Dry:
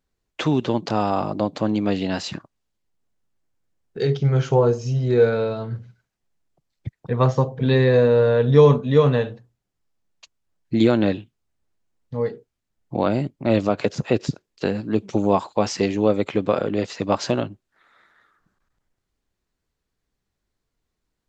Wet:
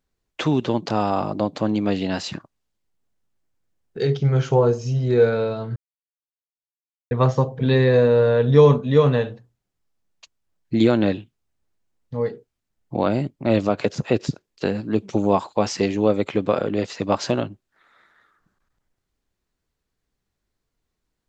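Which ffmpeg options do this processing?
-filter_complex "[0:a]asplit=3[s0][s1][s2];[s0]atrim=end=5.76,asetpts=PTS-STARTPTS,afade=t=out:st=5.756:d=0.004:c=hsin[s3];[s1]atrim=start=5.76:end=7.11,asetpts=PTS-STARTPTS,volume=0[s4];[s2]atrim=start=7.11,asetpts=PTS-STARTPTS,afade=t=in:d=0.004:c=hsin[s5];[s3][s4][s5]concat=n=3:v=0:a=1"

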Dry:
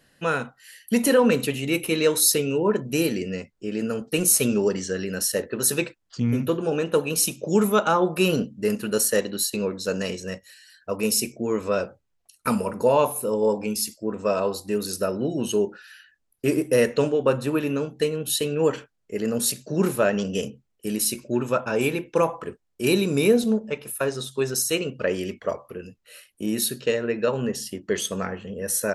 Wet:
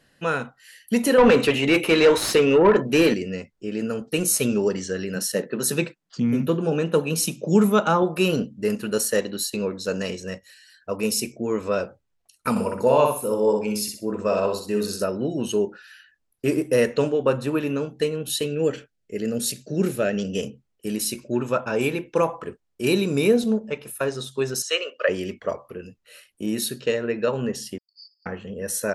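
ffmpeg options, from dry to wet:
-filter_complex "[0:a]asettb=1/sr,asplit=3[s0][s1][s2];[s0]atrim=end=1.184[s3];[s1]atrim=start=1.18:end=3.14,asetpts=PTS-STARTPTS,afade=t=in:d=0.004:c=qsin,afade=t=out:st=1.956:d=0.004:c=qsin,asplit=2[s4][s5];[s5]highpass=f=720:p=1,volume=12.6,asoftclip=type=tanh:threshold=0.531[s6];[s4][s6]amix=inputs=2:normalize=0,lowpass=f=1600:p=1,volume=0.501[s7];[s2]atrim=start=3.136[s8];[s3][s7]acrossfade=d=0.004:c1=hsin:c2=qsin[s9];[s9][s8]acrossfade=d=0.004:c1=qsin:c2=hsin,asettb=1/sr,asplit=3[s10][s11][s12];[s10]atrim=end=5.154[s13];[s11]atrim=start=5.15:end=8.03,asetpts=PTS-STARTPTS,afade=t=in:d=0.004:c=qsin,afade=t=out:st=2.876:d=0.004:c=qsin,lowshelf=f=120:t=q:w=3:g=-9[s14];[s12]atrim=start=8.026[s15];[s13][s14]acrossfade=d=0.004:c1=hsin:c2=qsin[s16];[s16][s15]acrossfade=d=0.004:c1=qsin:c2=hsin,asettb=1/sr,asplit=3[s17][s18][s19];[s17]atrim=end=12.504[s20];[s18]atrim=start=12.5:end=15.04,asetpts=PTS-STARTPTS,afade=t=in:d=0.004:c=qsin,afade=t=out:st=2.536:d=0.004:c=qsin,aecho=1:1:62|124|186|248:0.596|0.167|0.0467|0.0131,atrim=end_sample=112014[s21];[s19]atrim=start=15.036[s22];[s20][s21]acrossfade=d=0.004:c1=hsin:c2=qsin[s23];[s23][s22]acrossfade=d=0.004:c1=qsin:c2=hsin,asettb=1/sr,asplit=3[s24][s25][s26];[s24]atrim=end=18.464[s27];[s25]atrim=start=18.46:end=20.35,asetpts=PTS-STARTPTS,afade=t=in:d=0.004:c=qsin,afade=t=out:st=1.886:d=0.004:c=qsin,equalizer=f=1000:w=2.3:g=-15[s28];[s26]atrim=start=20.346[s29];[s27][s28]acrossfade=d=0.004:c1=hsin:c2=qsin[s30];[s30][s29]acrossfade=d=0.004:c1=qsin:c2=hsin,asettb=1/sr,asplit=3[s31][s32][s33];[s31]atrim=end=24.624[s34];[s32]atrim=start=24.62:end=25.09,asetpts=PTS-STARTPTS,afade=t=in:d=0.004:c=qsin,afade=t=out:st=0.466:d=0.004:c=qsin,highpass=f=500:w=0.5412,highpass=f=500:w=1.3066,equalizer=f=560:t=q:w=4:g=7,equalizer=f=820:t=q:w=4:g=-10,equalizer=f=1200:t=q:w=4:g=8,equalizer=f=1800:t=q:w=4:g=6,equalizer=f=3000:t=q:w=4:g=6,lowpass=f=7300:w=0.5412,lowpass=f=7300:w=1.3066[s35];[s33]atrim=start=25.086[s36];[s34][s35]acrossfade=d=0.004:c1=hsin:c2=qsin[s37];[s37][s36]acrossfade=d=0.004:c1=qsin:c2=hsin,asettb=1/sr,asplit=3[s38][s39][s40];[s38]atrim=end=27.784[s41];[s39]atrim=start=27.78:end=28.26,asetpts=PTS-STARTPTS,afade=t=in:d=0.004:c=qsin,afade=t=out:st=0.476:d=0.004:c=qsin,asuperpass=centerf=4800:order=12:qfactor=7.2[s42];[s40]atrim=start=28.256[s43];[s41][s42]acrossfade=d=0.004:c1=hsin:c2=qsin[s44];[s44][s43]acrossfade=d=0.004:c1=qsin:c2=hsin,highshelf=f=11000:g=-8"

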